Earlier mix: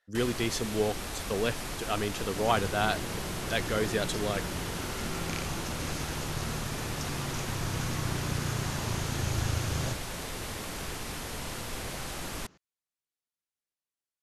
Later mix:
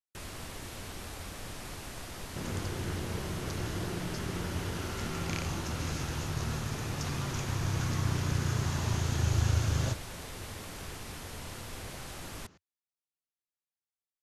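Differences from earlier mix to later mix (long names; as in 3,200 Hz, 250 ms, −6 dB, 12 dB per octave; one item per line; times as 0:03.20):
speech: muted
first sound −6.0 dB
master: add parametric band 88 Hz +6 dB 0.7 octaves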